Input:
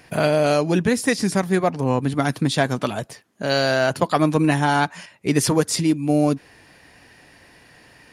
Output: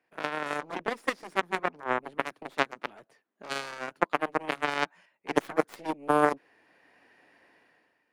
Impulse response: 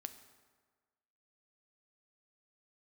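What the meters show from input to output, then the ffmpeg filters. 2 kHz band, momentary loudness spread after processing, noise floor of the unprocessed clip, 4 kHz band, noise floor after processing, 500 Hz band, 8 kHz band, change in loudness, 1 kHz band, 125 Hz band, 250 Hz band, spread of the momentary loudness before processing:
-6.5 dB, 9 LU, -52 dBFS, -12.0 dB, -76 dBFS, -10.5 dB, -20.0 dB, -10.5 dB, -6.0 dB, -24.0 dB, -16.0 dB, 8 LU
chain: -filter_complex "[0:a]aeval=exprs='0.708*(cos(1*acos(clip(val(0)/0.708,-1,1)))-cos(1*PI/2))+0.251*(cos(3*acos(clip(val(0)/0.708,-1,1)))-cos(3*PI/2))+0.0112*(cos(6*acos(clip(val(0)/0.708,-1,1)))-cos(6*PI/2))':c=same,dynaudnorm=f=110:g=9:m=15dB,acrossover=split=230 2800:gain=0.1 1 0.224[a][b][c];[a][b][c]amix=inputs=3:normalize=0"

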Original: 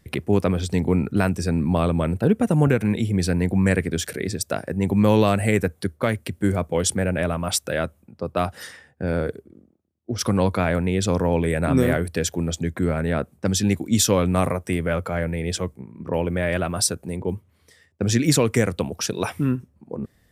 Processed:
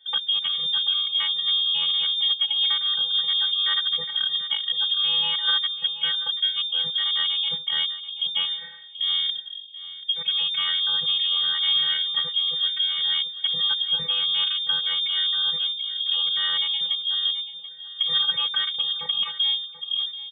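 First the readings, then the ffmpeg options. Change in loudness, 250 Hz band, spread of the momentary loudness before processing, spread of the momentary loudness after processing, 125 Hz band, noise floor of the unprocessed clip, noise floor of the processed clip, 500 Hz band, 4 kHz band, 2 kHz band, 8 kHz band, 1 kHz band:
+1.0 dB, under -35 dB, 10 LU, 6 LU, under -30 dB, -62 dBFS, -39 dBFS, under -25 dB, +16.5 dB, -4.5 dB, under -40 dB, -10.5 dB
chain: -filter_complex "[0:a]equalizer=f=125:t=o:w=1:g=5,equalizer=f=250:t=o:w=1:g=10,equalizer=f=1k:t=o:w=1:g=-12,afftfilt=real='hypot(re,im)*cos(PI*b)':imag='0':win_size=512:overlap=0.75,acrossover=split=740|1200[a][b][c];[a]acompressor=threshold=-31dB:ratio=10[d];[d][b][c]amix=inputs=3:normalize=0,lowshelf=f=460:g=9.5,asplit=2[e][f];[f]aecho=0:1:734|1468:0.188|0.0414[g];[e][g]amix=inputs=2:normalize=0,acontrast=31,lowpass=f=3.1k:t=q:w=0.5098,lowpass=f=3.1k:t=q:w=0.6013,lowpass=f=3.1k:t=q:w=0.9,lowpass=f=3.1k:t=q:w=2.563,afreqshift=-3600,volume=-3.5dB"

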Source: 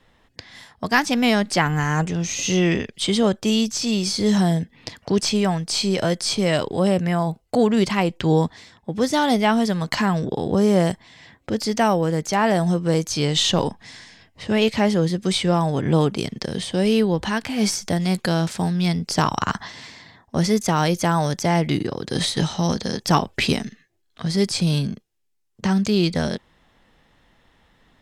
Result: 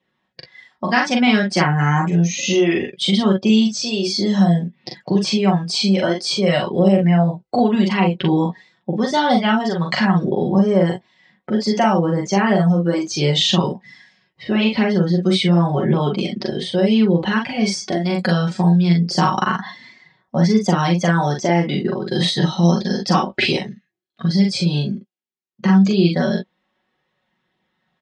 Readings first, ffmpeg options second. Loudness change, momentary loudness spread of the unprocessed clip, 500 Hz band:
+3.5 dB, 9 LU, +2.0 dB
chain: -af "afftdn=nr=16:nf=-35,aecho=1:1:5.4:0.62,acompressor=threshold=-18dB:ratio=2,flanger=delay=0.2:depth=6.4:regen=-34:speed=0.29:shape=triangular,highpass=140,lowpass=5.1k,aecho=1:1:41|57:0.708|0.211,volume=6.5dB"

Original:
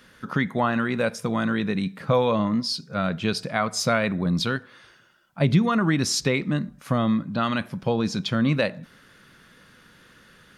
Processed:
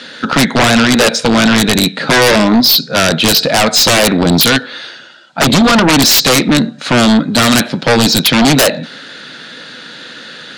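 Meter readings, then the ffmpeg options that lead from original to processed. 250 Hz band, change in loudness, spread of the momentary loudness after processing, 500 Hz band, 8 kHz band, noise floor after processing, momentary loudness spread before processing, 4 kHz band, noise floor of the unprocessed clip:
+13.0 dB, +15.0 dB, 22 LU, +12.5 dB, +20.0 dB, -32 dBFS, 6 LU, +21.0 dB, -54 dBFS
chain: -af "aeval=exprs='0.376*(cos(1*acos(clip(val(0)/0.376,-1,1)))-cos(1*PI/2))+0.0119*(cos(4*acos(clip(val(0)/0.376,-1,1)))-cos(4*PI/2))+0.0531*(cos(6*acos(clip(val(0)/0.376,-1,1)))-cos(6*PI/2))+0.00668*(cos(8*acos(clip(val(0)/0.376,-1,1)))-cos(8*PI/2))':c=same,highpass=f=180:w=0.5412,highpass=f=180:w=1.3066,equalizer=f=190:t=q:w=4:g=-10,equalizer=f=380:t=q:w=4:g=-6,equalizer=f=1.1k:t=q:w=4:g=-10,equalizer=f=2.1k:t=q:w=4:g=-3,equalizer=f=4k:t=q:w=4:g=10,equalizer=f=5.8k:t=q:w=4:g=-4,lowpass=f=7.2k:w=0.5412,lowpass=f=7.2k:w=1.3066,aeval=exprs='0.422*sin(PI/2*7.08*val(0)/0.422)':c=same,volume=2.5dB"

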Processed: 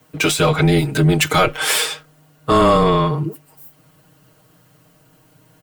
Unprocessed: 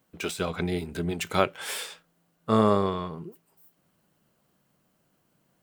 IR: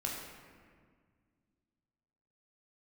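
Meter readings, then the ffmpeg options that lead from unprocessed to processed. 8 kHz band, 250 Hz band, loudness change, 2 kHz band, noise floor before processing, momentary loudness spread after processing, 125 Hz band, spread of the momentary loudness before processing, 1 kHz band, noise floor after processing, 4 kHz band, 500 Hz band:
+16.0 dB, +10.0 dB, +11.5 dB, +14.5 dB, -71 dBFS, 11 LU, +15.0 dB, 17 LU, +11.5 dB, -55 dBFS, +15.0 dB, +10.0 dB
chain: -af "aecho=1:1:6.3:0.92,apsyclip=21.5dB,afreqshift=-18,volume=-8dB"

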